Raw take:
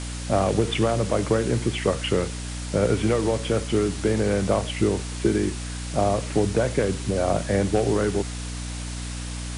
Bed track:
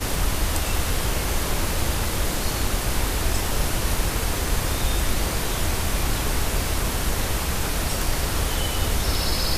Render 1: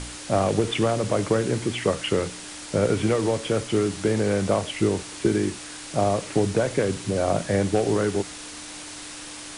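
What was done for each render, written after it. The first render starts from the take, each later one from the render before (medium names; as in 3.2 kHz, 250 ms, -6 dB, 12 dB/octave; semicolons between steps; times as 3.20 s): de-hum 60 Hz, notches 4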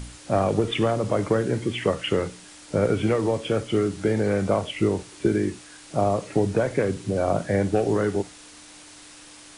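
noise print and reduce 8 dB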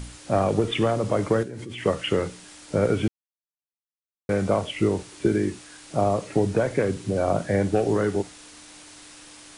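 1.43–1.86 s: level held to a coarse grid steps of 18 dB; 3.08–4.29 s: mute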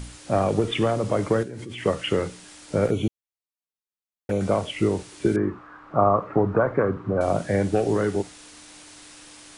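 2.87–4.41 s: touch-sensitive flanger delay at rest 4.8 ms, full sweep at -22.5 dBFS; 5.36–7.21 s: resonant low-pass 1.2 kHz, resonance Q 4.8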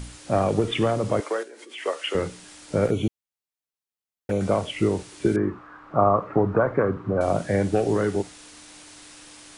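1.20–2.15 s: Bessel high-pass 550 Hz, order 6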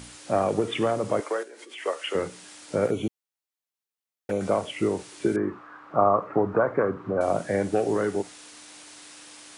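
high-pass 280 Hz 6 dB/octave; dynamic bell 3.7 kHz, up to -4 dB, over -43 dBFS, Q 0.82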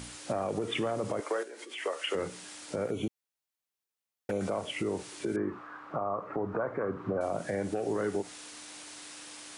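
compression, threshold -26 dBFS, peak gain reduction 11 dB; peak limiter -22 dBFS, peak gain reduction 6.5 dB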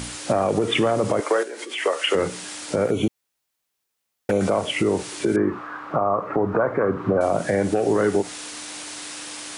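trim +11.5 dB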